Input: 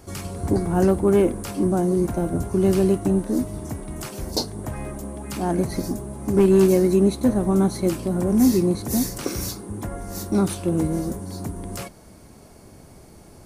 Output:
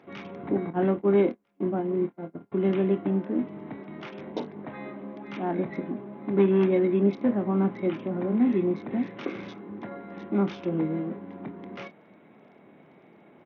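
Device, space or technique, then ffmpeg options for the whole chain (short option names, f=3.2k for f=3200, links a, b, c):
Bluetooth headset: -filter_complex "[0:a]asettb=1/sr,asplit=3[a][b][c];[a]atrim=end=0.704[d];[b]atrim=start=0.7:end=2.52,asetpts=PTS-STARTPTS,afade=t=in:d=0.004:c=qsin,afade=t=out:st=1.816:d=0.004:c=qsin,agate=range=-35dB:threshold=-20dB:ratio=16:detection=peak[e];[c]atrim=start=2.516[f];[d][e]acrossfade=d=0.004:c1=hsin:c2=qsin[g];[g][f]acrossfade=d=0.004:c1=qsin:c2=hsin,highpass=f=170:w=0.5412,highpass=f=170:w=1.3066,equalizer=f=2.1k:t=o:w=0.37:g=5.5,asplit=2[h][i];[i]adelay=25,volume=-10.5dB[j];[h][j]amix=inputs=2:normalize=0,aresample=8000,aresample=44100,volume=-5dB" -ar 48000 -c:a sbc -b:a 64k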